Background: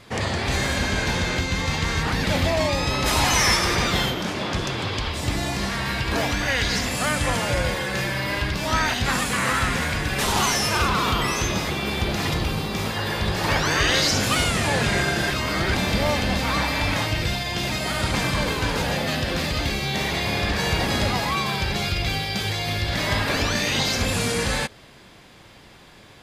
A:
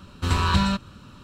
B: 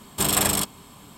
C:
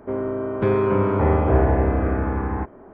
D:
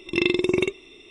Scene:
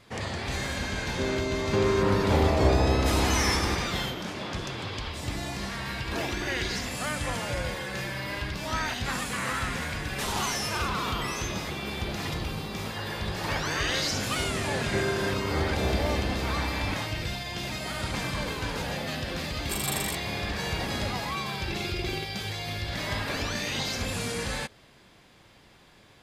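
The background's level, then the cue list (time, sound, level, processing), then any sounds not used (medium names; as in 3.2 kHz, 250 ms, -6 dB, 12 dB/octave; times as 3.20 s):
background -8 dB
1.11 s: add C -5 dB
6.03 s: add D -10.5 dB + compression, threshold -22 dBFS
14.31 s: add C -11.5 dB
19.51 s: add B -10.5 dB
21.55 s: add D -11 dB + peak limiter -14 dBFS
not used: A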